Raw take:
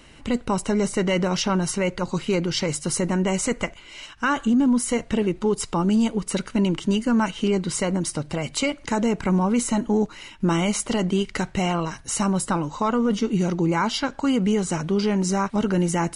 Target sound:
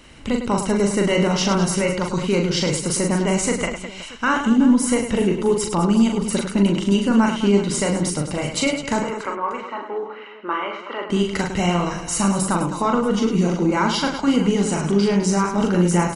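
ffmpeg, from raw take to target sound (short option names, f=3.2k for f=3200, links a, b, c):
-filter_complex "[0:a]asettb=1/sr,asplit=3[a][b][c];[a]atrim=end=9.004[d];[b]atrim=start=9:end=11.1,asetpts=PTS-STARTPTS,afade=t=in:d=0.004:c=qsin,afade=t=out:st=2.096:d=0.004:c=qsin,highpass=f=420:w=0.5412,highpass=f=420:w=1.3066,equalizer=f=480:t=q:w=4:g=-5,equalizer=f=720:t=q:w=4:g=-9,equalizer=f=1.2k:t=q:w=4:g=6,equalizer=f=2.3k:t=q:w=4:g=-4,lowpass=f=2.5k:w=0.5412,lowpass=f=2.5k:w=1.3066[e];[c]atrim=start=11.096[f];[d][e]acrossfade=d=0.004:c1=hsin:c2=qsin[g];[g][f]acrossfade=d=0.004:c1=qsin:c2=hsin,aecho=1:1:40|104|206.4|370.2|632.4:0.631|0.398|0.251|0.158|0.1,volume=1.5dB"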